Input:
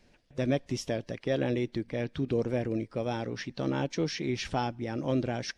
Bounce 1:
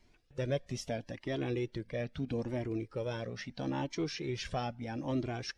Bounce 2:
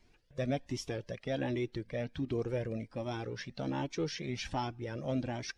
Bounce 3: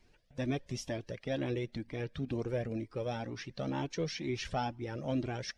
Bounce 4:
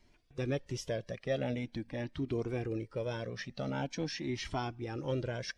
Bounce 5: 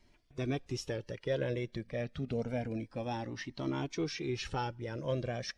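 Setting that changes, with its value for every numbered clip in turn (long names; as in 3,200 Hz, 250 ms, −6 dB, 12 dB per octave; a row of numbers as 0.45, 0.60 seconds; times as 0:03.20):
flanger whose copies keep moving one way, speed: 0.77, 1.3, 2.1, 0.45, 0.28 Hertz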